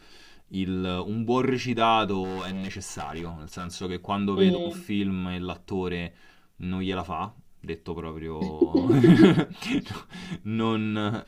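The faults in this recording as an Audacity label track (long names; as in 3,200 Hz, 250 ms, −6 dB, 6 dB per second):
2.230000	3.840000	clipping −29.5 dBFS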